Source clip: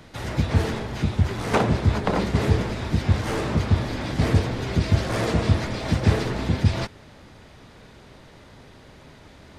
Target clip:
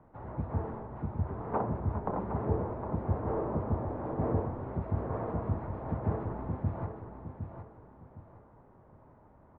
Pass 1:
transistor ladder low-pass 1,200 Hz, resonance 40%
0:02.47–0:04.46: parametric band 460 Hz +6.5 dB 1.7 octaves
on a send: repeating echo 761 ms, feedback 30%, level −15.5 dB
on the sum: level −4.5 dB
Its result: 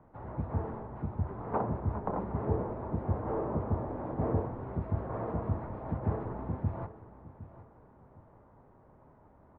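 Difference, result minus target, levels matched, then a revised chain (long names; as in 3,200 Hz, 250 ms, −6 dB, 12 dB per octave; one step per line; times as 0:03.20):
echo-to-direct −7.5 dB
transistor ladder low-pass 1,200 Hz, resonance 40%
0:02.47–0:04.46: parametric band 460 Hz +6.5 dB 1.7 octaves
on a send: repeating echo 761 ms, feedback 30%, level −8 dB
on the sum: level −4.5 dB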